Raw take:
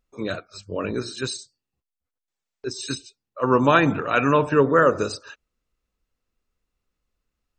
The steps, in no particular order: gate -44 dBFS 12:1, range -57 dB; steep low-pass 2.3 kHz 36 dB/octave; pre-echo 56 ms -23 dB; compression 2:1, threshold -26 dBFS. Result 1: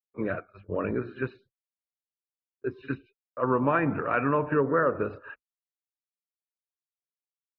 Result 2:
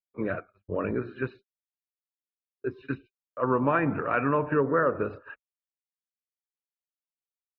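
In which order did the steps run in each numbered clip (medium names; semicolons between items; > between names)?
pre-echo > gate > steep low-pass > compression; steep low-pass > compression > pre-echo > gate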